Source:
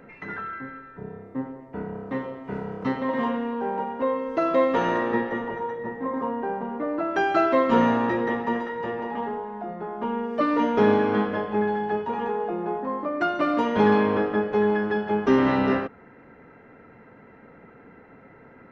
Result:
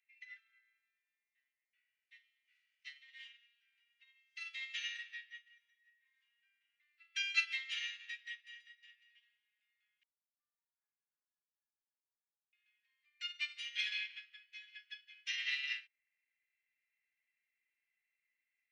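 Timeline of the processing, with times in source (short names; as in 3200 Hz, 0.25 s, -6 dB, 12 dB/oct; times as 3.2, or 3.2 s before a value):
10.03–12.53 steep low-pass 890 Hz
whole clip: steep high-pass 2200 Hz 48 dB/oct; upward expander 2.5:1, over -55 dBFS; gain +9 dB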